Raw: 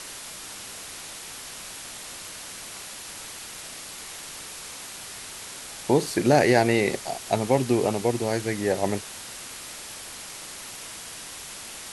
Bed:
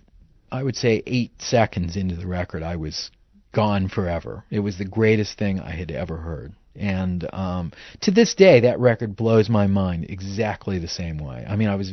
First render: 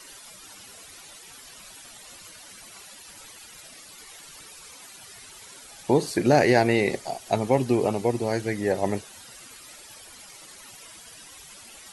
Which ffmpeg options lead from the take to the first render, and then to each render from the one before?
-af "afftdn=nr=13:nf=-40"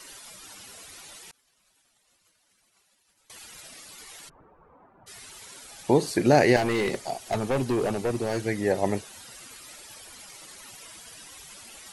-filter_complex "[0:a]asettb=1/sr,asplit=3[s0][s1][s2];[s0]atrim=end=1.314[s3];[s1]atrim=start=1.31:end=3.3,asetpts=PTS-STARTPTS,afade=t=in:d=0.004:c=qsin,afade=t=out:st=1.986:d=0.004:c=qsin,agate=range=0.0224:threshold=0.0224:ratio=3:release=100:detection=peak[s4];[s2]atrim=start=3.296[s5];[s3][s4]acrossfade=d=0.004:c1=hsin:c2=qsin[s6];[s6][s5]acrossfade=d=0.004:c1=qsin:c2=hsin,asplit=3[s7][s8][s9];[s7]afade=t=out:st=4.28:d=0.02[s10];[s8]lowpass=f=1100:w=0.5412,lowpass=f=1100:w=1.3066,afade=t=in:st=4.28:d=0.02,afade=t=out:st=5.06:d=0.02[s11];[s9]afade=t=in:st=5.06:d=0.02[s12];[s10][s11][s12]amix=inputs=3:normalize=0,asettb=1/sr,asplit=3[s13][s14][s15];[s13]atrim=end=6.564[s16];[s14]atrim=start=6.56:end=8.45,asetpts=PTS-STARTPTS,afade=t=in:d=0.004:c=qsin,afade=t=out:st=1.886:d=0.004:c=qsin,volume=11.2,asoftclip=hard,volume=0.0891[s17];[s15]atrim=start=8.446[s18];[s16][s17]acrossfade=d=0.004:c1=hsin:c2=qsin[s19];[s19][s18]acrossfade=d=0.004:c1=qsin:c2=hsin"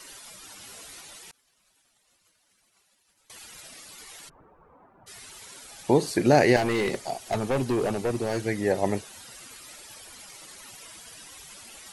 -filter_complex "[0:a]asettb=1/sr,asplit=3[s0][s1][s2];[s0]atrim=end=0.604[s3];[s1]atrim=start=0.6:end=1.01,asetpts=PTS-STARTPTS,afade=t=in:d=0.004:c=qsin,afade=t=out:st=0.406:d=0.004:c=qsin,asplit=2[s4][s5];[s5]adelay=18,volume=0.562[s6];[s4][s6]amix=inputs=2:normalize=0,atrim=end_sample=18081[s7];[s2]atrim=start=1.006[s8];[s3][s7]acrossfade=d=0.004:c1=hsin:c2=qsin[s9];[s9][s8]acrossfade=d=0.004:c1=qsin:c2=hsin"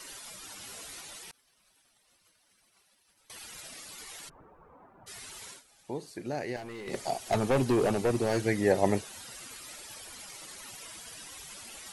-filter_complex "[0:a]asettb=1/sr,asplit=3[s0][s1][s2];[s0]atrim=end=1.244[s3];[s1]atrim=start=1.24:end=3.45,asetpts=PTS-STARTPTS,afade=t=in:d=0.004:c=qsin,afade=t=out:st=2.206:d=0.004:c=qsin,bandreject=f=7000:w=8.1[s4];[s2]atrim=start=3.446[s5];[s3][s4]acrossfade=d=0.004:c1=hsin:c2=qsin[s6];[s6][s5]acrossfade=d=0.004:c1=qsin:c2=hsin,asplit=3[s7][s8][s9];[s7]atrim=end=5.63,asetpts=PTS-STARTPTS,afade=t=out:st=5.49:d=0.14:silence=0.149624[s10];[s8]atrim=start=5.63:end=6.86,asetpts=PTS-STARTPTS,volume=0.15[s11];[s9]atrim=start=6.86,asetpts=PTS-STARTPTS,afade=t=in:d=0.14:silence=0.149624[s12];[s10][s11][s12]concat=n=3:v=0:a=1"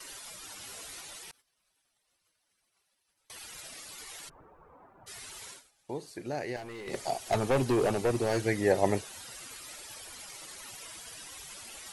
-af "agate=range=0.355:threshold=0.00112:ratio=16:detection=peak,equalizer=f=210:t=o:w=0.77:g=-4"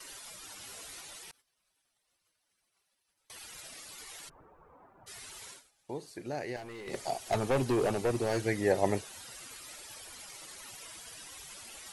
-af "volume=0.794"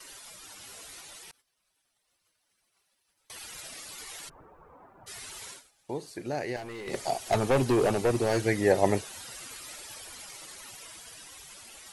-af "dynaudnorm=f=570:g=7:m=1.68"

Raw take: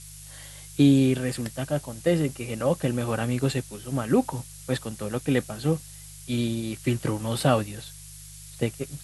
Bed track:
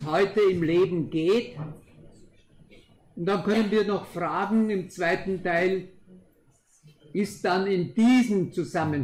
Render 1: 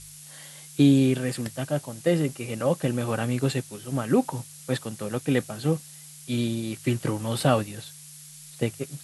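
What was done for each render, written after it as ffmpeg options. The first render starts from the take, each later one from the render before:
-af "bandreject=f=50:t=h:w=4,bandreject=f=100:t=h:w=4"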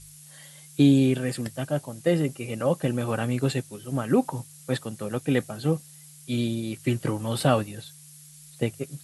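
-af "afftdn=nr=6:nf=-46"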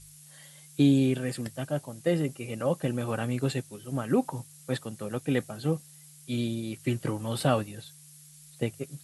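-af "volume=0.668"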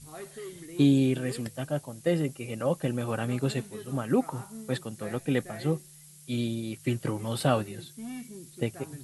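-filter_complex "[1:a]volume=0.0944[s0];[0:a][s0]amix=inputs=2:normalize=0"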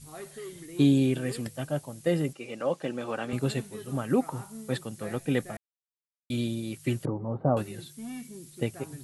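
-filter_complex "[0:a]asettb=1/sr,asplit=3[s0][s1][s2];[s0]atrim=end=2.334[s3];[s1]atrim=start=2.33:end=3.33,asetpts=PTS-STARTPTS,afade=t=in:d=0.004:c=qsin,afade=t=out:st=0.996:d=0.004:c=qsin,highpass=260,lowpass=6300[s4];[s2]atrim=start=3.326[s5];[s3][s4]acrossfade=d=0.004:c1=hsin:c2=qsin[s6];[s6][s5]acrossfade=d=0.004:c1=qsin:c2=hsin,asettb=1/sr,asplit=3[s7][s8][s9];[s7]atrim=end=7.054[s10];[s8]atrim=start=7.05:end=7.57,asetpts=PTS-STARTPTS,afade=t=in:d=0.004:c=qsin,afade=t=out:st=0.516:d=0.004:c=qsin,lowpass=f=1000:w=0.5412,lowpass=f=1000:w=1.3066[s11];[s9]atrim=start=7.566[s12];[s10][s11]acrossfade=d=0.004:c1=hsin:c2=qsin[s13];[s13][s12]acrossfade=d=0.004:c1=qsin:c2=hsin,asplit=3[s14][s15][s16];[s14]atrim=end=5.57,asetpts=PTS-STARTPTS,afade=t=out:st=5.566:d=0.004:c=hsin[s17];[s15]atrim=start=5.57:end=6.3,asetpts=PTS-STARTPTS,volume=0[s18];[s16]atrim=start=6.3,asetpts=PTS-STARTPTS,afade=t=in:d=0.004:c=hsin[s19];[s17][s18][s19]concat=n=3:v=0:a=1"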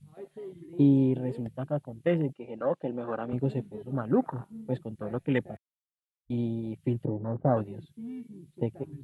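-af "highshelf=f=4200:t=q:w=1.5:g=-8,afwtdn=0.0178"

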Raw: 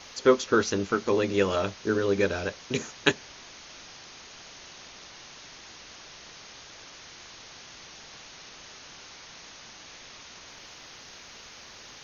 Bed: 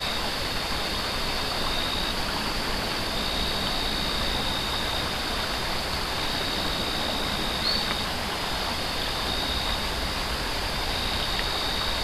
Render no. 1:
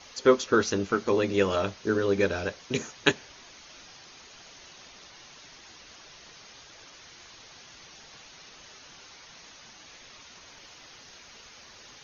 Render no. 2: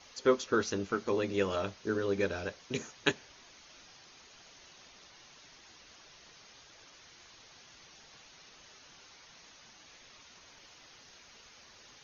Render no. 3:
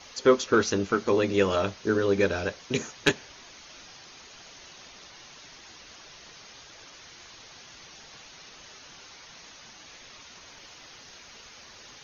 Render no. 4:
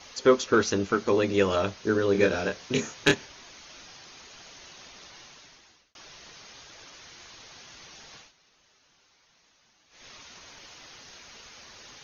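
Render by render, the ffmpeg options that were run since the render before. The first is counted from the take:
-af "afftdn=nr=6:nf=-48"
-af "volume=0.473"
-af "aeval=exprs='0.335*sin(PI/2*1.58*val(0)/0.335)':c=same"
-filter_complex "[0:a]asettb=1/sr,asplit=3[s0][s1][s2];[s0]atrim=end=2.124[s3];[s1]atrim=start=2.12:end=3.26,asetpts=PTS-STARTPTS,afade=t=in:d=0.004:c=qsin,afade=t=out:st=1.136:d=0.004:c=qsin,asplit=2[s4][s5];[s5]adelay=27,volume=0.631[s6];[s4][s6]amix=inputs=2:normalize=0,atrim=end_sample=50274[s7];[s2]atrim=start=3.256[s8];[s3][s7]acrossfade=d=0.004:c1=hsin:c2=qsin[s9];[s9][s8]acrossfade=d=0.004:c1=qsin:c2=hsin,asplit=4[s10][s11][s12][s13];[s10]atrim=end=5.95,asetpts=PTS-STARTPTS,afade=t=out:st=5.18:d=0.77[s14];[s11]atrim=start=5.95:end=8.33,asetpts=PTS-STARTPTS,afade=t=in:d=0.004:c=hsin,afade=t=out:st=2.21:d=0.17:silence=0.158489[s15];[s12]atrim=start=8.33:end=9.9,asetpts=PTS-STARTPTS,volume=0.158[s16];[s13]atrim=start=9.9,asetpts=PTS-STARTPTS,afade=t=in:d=0.17:silence=0.158489[s17];[s14][s15][s16][s17]concat=n=4:v=0:a=1"

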